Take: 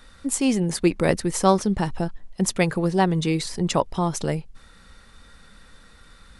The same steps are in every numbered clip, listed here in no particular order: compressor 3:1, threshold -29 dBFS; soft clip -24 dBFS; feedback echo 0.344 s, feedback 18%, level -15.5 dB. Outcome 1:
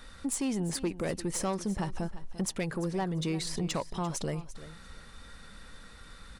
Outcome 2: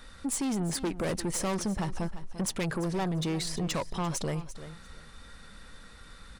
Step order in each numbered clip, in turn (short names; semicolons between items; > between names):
compressor > soft clip > feedback echo; soft clip > feedback echo > compressor